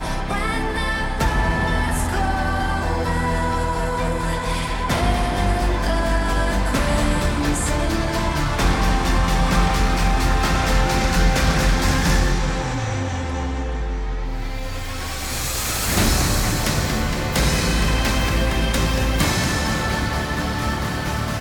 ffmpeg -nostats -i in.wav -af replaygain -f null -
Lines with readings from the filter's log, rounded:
track_gain = +4.6 dB
track_peak = 0.292